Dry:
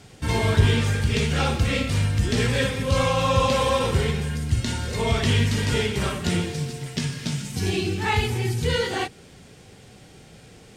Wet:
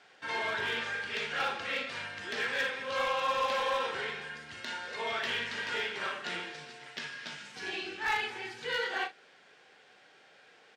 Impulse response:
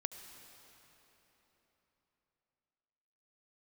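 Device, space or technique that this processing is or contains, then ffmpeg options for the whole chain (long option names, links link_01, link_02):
megaphone: -filter_complex "[0:a]highpass=650,lowpass=3700,equalizer=frequency=1600:width_type=o:width=0.34:gain=7,asoftclip=type=hard:threshold=-19.5dB,asplit=2[link_01][link_02];[link_02]adelay=39,volume=-10dB[link_03];[link_01][link_03]amix=inputs=2:normalize=0,volume=-6dB"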